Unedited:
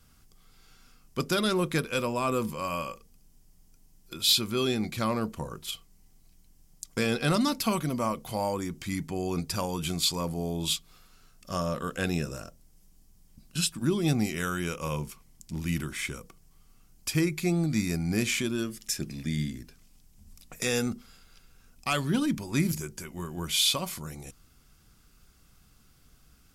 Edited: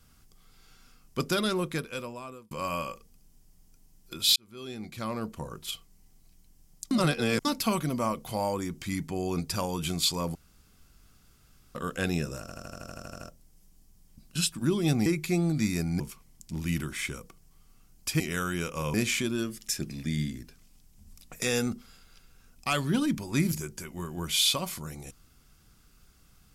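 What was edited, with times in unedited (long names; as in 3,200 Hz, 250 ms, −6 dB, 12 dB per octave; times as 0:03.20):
0:01.26–0:02.51: fade out
0:04.36–0:05.72: fade in
0:06.91–0:07.45: reverse
0:10.35–0:11.75: fill with room tone
0:12.40: stutter 0.08 s, 11 plays
0:14.26–0:15.00: swap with 0:17.20–0:18.14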